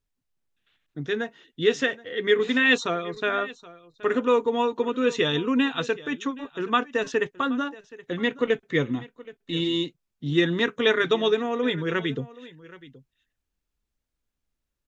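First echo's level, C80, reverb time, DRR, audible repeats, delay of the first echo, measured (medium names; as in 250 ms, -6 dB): -19.5 dB, no reverb, no reverb, no reverb, 1, 774 ms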